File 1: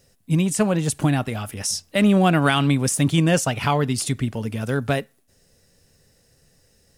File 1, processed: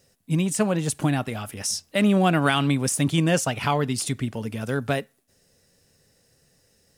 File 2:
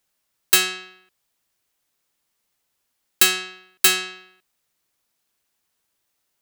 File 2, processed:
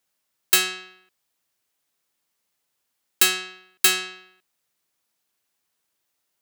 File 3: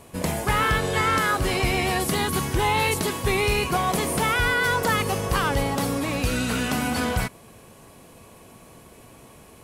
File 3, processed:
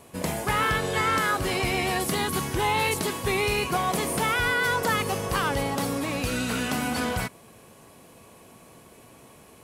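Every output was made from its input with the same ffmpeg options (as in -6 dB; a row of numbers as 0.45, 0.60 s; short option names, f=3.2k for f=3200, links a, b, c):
-filter_complex "[0:a]lowshelf=f=61:g=-11.5,acrossover=split=6800[a][b];[b]acrusher=bits=6:mode=log:mix=0:aa=0.000001[c];[a][c]amix=inputs=2:normalize=0,volume=-2dB"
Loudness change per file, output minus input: -2.5, -2.0, -2.5 LU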